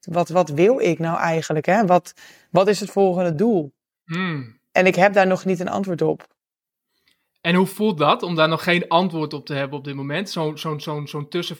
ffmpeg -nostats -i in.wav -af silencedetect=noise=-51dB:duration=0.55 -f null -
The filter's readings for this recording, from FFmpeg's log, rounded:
silence_start: 6.31
silence_end: 7.07 | silence_duration: 0.75